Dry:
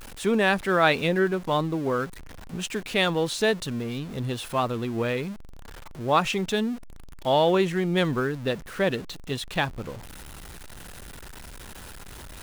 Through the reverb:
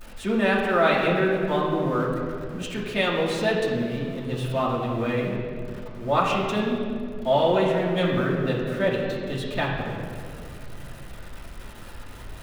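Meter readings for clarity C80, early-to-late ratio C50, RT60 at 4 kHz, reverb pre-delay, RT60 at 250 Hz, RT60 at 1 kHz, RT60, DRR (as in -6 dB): 3.5 dB, 2.0 dB, 1.4 s, 3 ms, 3.3 s, 1.9 s, 2.5 s, -7.0 dB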